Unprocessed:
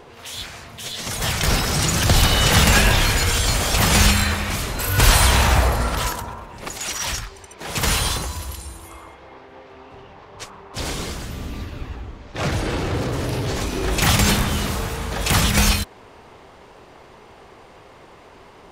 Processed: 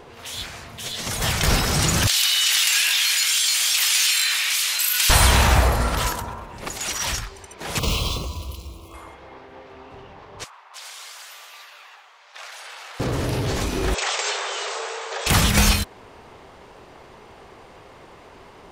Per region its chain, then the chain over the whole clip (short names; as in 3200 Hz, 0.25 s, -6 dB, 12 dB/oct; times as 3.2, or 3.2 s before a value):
2.07–5.1 Chebyshev high-pass 2900 Hz + fast leveller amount 70%
7.79–8.94 median filter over 5 samples + Chebyshev band-stop 1100–2600 Hz + bell 840 Hz -13.5 dB 0.27 oct
10.44–13 Bessel high-pass 1100 Hz, order 6 + compressor 4:1, threshold -36 dBFS
13.94–15.27 brick-wall FIR band-pass 370–8400 Hz + compressor 2:1, threshold -24 dBFS
whole clip: dry